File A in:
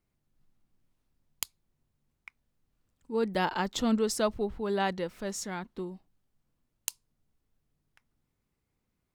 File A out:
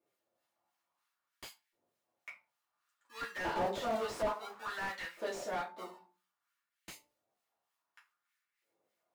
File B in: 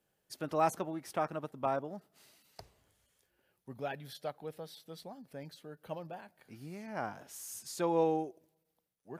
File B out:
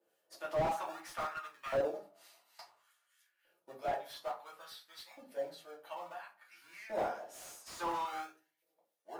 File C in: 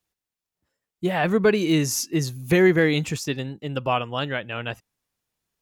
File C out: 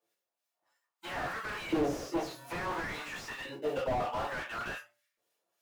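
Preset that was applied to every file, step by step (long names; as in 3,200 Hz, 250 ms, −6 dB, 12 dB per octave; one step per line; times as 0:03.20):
hum removal 294.5 Hz, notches 3
two-band tremolo in antiphase 3.3 Hz, depth 70%, crossover 1,200 Hz
in parallel at −11 dB: sample-and-hold swept by an LFO 42×, swing 60% 0.54 Hz
on the sum: soft clipping −23 dBFS
auto-filter high-pass saw up 0.58 Hz 440–2,000 Hz
rectangular room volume 120 cubic metres, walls furnished, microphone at 2.6 metres
slew-rate limiting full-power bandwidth 34 Hz
level −3.5 dB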